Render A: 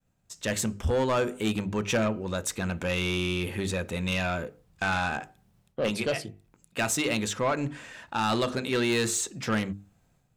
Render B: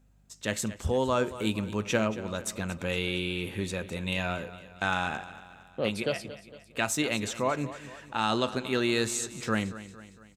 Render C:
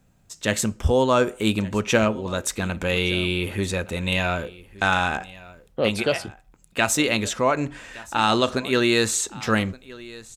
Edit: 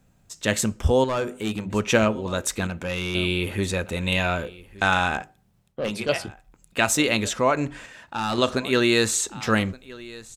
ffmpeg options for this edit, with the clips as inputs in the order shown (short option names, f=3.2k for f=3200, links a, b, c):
-filter_complex "[0:a]asplit=4[a][b][c][d];[2:a]asplit=5[e][f][g][h][i];[e]atrim=end=1.042[j];[a]atrim=start=1.038:end=1.702[k];[f]atrim=start=1.698:end=2.672[l];[b]atrim=start=2.668:end=3.152[m];[g]atrim=start=3.148:end=5.222[n];[c]atrim=start=5.218:end=6.092[o];[h]atrim=start=6.088:end=7.862[p];[d]atrim=start=7.858:end=8.382[q];[i]atrim=start=8.378[r];[j][k]acrossfade=d=0.004:c1=hsin:c2=hsin[s];[s][l]acrossfade=d=0.004:c1=hsin:c2=hsin[t];[t][m]acrossfade=d=0.004:c1=hsin:c2=hsin[u];[u][n]acrossfade=d=0.004:c1=hsin:c2=hsin[v];[v][o]acrossfade=d=0.004:c1=hsin:c2=hsin[w];[w][p]acrossfade=d=0.004:c1=hsin:c2=hsin[x];[x][q]acrossfade=d=0.004:c1=hsin:c2=hsin[y];[y][r]acrossfade=d=0.004:c1=hsin:c2=hsin"